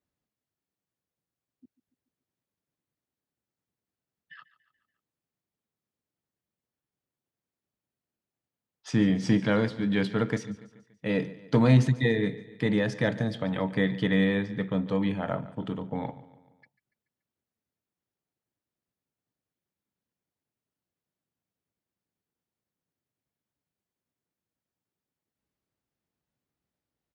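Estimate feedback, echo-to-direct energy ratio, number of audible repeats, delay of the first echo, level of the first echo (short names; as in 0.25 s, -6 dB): 52%, -16.5 dB, 3, 0.143 s, -18.0 dB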